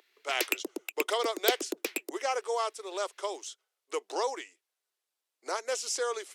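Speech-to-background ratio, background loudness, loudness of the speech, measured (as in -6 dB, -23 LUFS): 0.5 dB, -34.0 LUFS, -33.5 LUFS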